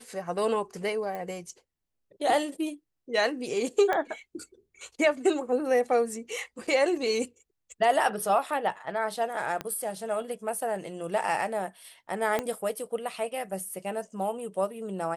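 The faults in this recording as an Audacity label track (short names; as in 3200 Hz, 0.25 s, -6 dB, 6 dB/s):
1.150000	1.150000	pop -24 dBFS
3.930000	3.930000	pop -15 dBFS
6.670000	6.670000	gap 4.7 ms
9.610000	9.610000	pop -18 dBFS
12.390000	12.390000	pop -14 dBFS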